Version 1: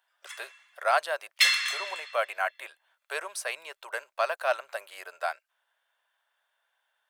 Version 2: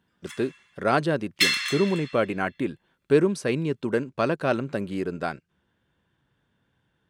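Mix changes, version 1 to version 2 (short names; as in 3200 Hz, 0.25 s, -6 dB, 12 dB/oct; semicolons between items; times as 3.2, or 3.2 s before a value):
speech: add BPF 200–7500 Hz; master: remove elliptic high-pass 630 Hz, stop band 60 dB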